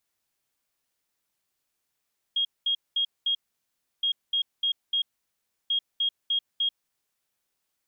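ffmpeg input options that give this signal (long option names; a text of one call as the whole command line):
ffmpeg -f lavfi -i "aevalsrc='0.0794*sin(2*PI*3260*t)*clip(min(mod(mod(t,1.67),0.3),0.09-mod(mod(t,1.67),0.3))/0.005,0,1)*lt(mod(t,1.67),1.2)':duration=5.01:sample_rate=44100" out.wav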